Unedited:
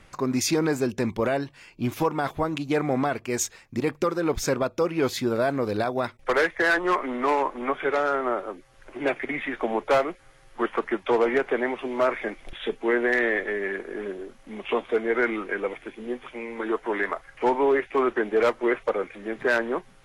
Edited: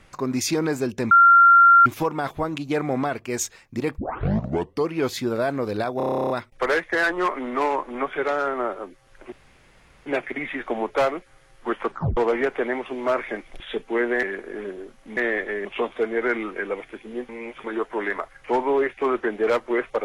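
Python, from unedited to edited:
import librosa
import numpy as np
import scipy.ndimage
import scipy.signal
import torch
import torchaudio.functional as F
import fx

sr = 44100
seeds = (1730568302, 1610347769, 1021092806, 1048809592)

y = fx.edit(x, sr, fx.bleep(start_s=1.11, length_s=0.75, hz=1380.0, db=-9.0),
    fx.tape_start(start_s=3.98, length_s=0.93),
    fx.stutter(start_s=5.97, slice_s=0.03, count=12),
    fx.insert_room_tone(at_s=8.99, length_s=0.74),
    fx.tape_stop(start_s=10.81, length_s=0.29),
    fx.move(start_s=13.16, length_s=0.48, to_s=14.58),
    fx.reverse_span(start_s=16.22, length_s=0.35), tone=tone)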